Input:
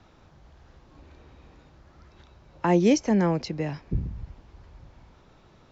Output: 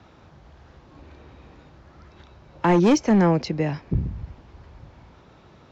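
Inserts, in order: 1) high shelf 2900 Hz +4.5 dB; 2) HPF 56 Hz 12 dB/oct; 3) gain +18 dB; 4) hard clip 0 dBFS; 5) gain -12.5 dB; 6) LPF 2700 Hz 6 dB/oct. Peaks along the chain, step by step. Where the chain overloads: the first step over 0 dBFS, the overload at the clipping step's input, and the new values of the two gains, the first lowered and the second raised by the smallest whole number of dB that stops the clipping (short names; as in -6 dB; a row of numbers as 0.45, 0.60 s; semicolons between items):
-8.5, -9.0, +9.0, 0.0, -12.5, -12.5 dBFS; step 3, 9.0 dB; step 3 +9 dB, step 5 -3.5 dB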